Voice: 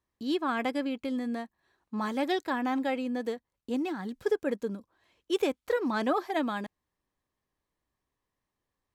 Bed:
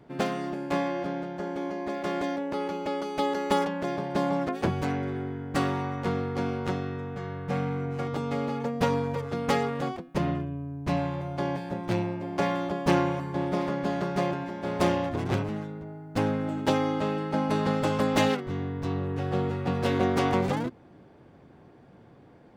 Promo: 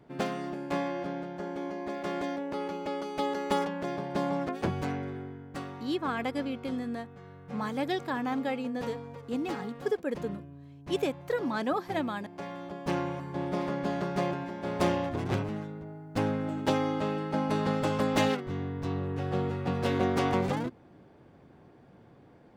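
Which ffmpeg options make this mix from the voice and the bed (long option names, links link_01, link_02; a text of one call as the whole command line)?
ffmpeg -i stem1.wav -i stem2.wav -filter_complex "[0:a]adelay=5600,volume=-2dB[link_01];[1:a]volume=7.5dB,afade=type=out:start_time=4.83:duration=0.82:silence=0.316228,afade=type=in:start_time=12.44:duration=1.31:silence=0.281838[link_02];[link_01][link_02]amix=inputs=2:normalize=0" out.wav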